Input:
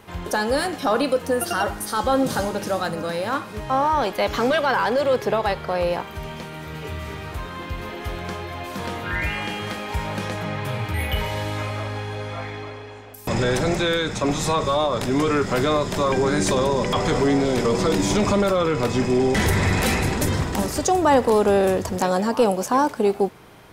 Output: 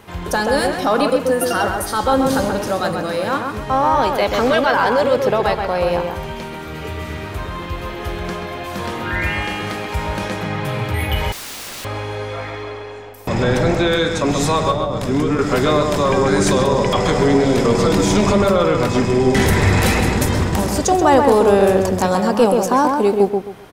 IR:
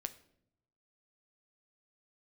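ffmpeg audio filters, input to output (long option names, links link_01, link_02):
-filter_complex "[0:a]asettb=1/sr,asplit=3[link_01][link_02][link_03];[link_01]atrim=end=13.094[link_04];[link_02]atrim=start=13.09:end=13.92,asetpts=PTS-STARTPTS,afade=type=in:duration=0.004:curve=qsin,afade=type=out:start_time=0.826:duration=0.004:curve=qsin,equalizer=frequency=9900:width=0.46:gain=-7.5[link_05];[link_03]atrim=start=13.916[link_06];[link_04][link_05]acrossfade=duration=0.004:curve1=hsin:curve2=qsin[link_07];[link_07][link_06]acrossfade=duration=0.004:curve1=qsin:curve2=hsin,asettb=1/sr,asplit=3[link_08][link_09][link_10];[link_08]atrim=end=14.714[link_11];[link_09]atrim=start=14.71:end=15.39,asetpts=PTS-STARTPTS,afade=type=in:duration=0.004:curve=qsin,afade=type=out:start_time=0.676:duration=0.004:curve=qsin,acrossover=split=360[link_12][link_13];[link_13]acompressor=threshold=-28dB:ratio=6[link_14];[link_12][link_14]amix=inputs=2:normalize=0[link_15];[link_10]atrim=start=15.386[link_16];[link_11][link_15]acrossfade=duration=0.004:curve1=hsin:curve2=qsin[link_17];[link_17][link_16]acrossfade=duration=0.004:curve1=qsin:curve2=hsin,asplit=2[link_18][link_19];[link_19]adelay=132,lowpass=frequency=2000:poles=1,volume=-3.5dB,asplit=2[link_20][link_21];[link_21]adelay=132,lowpass=frequency=2000:poles=1,volume=0.28,asplit=2[link_22][link_23];[link_23]adelay=132,lowpass=frequency=2000:poles=1,volume=0.28,asplit=2[link_24][link_25];[link_25]adelay=132,lowpass=frequency=2000:poles=1,volume=0.28[link_26];[link_20][link_22][link_24][link_26]amix=inputs=4:normalize=0[link_27];[link_18][link_27]amix=inputs=2:normalize=0,asettb=1/sr,asplit=3[link_28][link_29][link_30];[link_28]atrim=end=11.324[link_31];[link_29]atrim=start=11.32:end=11.85,asetpts=PTS-STARTPTS,afade=type=in:duration=0.004:curve=qsin,afade=type=out:start_time=0.526:duration=0.004:curve=qsin,aeval=exprs='(mod(31.6*val(0)+1,2)-1)/31.6':channel_layout=same[link_32];[link_30]atrim=start=11.846[link_33];[link_31][link_32]acrossfade=duration=0.004:curve1=hsin:curve2=qsin[link_34];[link_34][link_33]acrossfade=duration=0.004:curve1=qsin:curve2=hsin,volume=3.5dB"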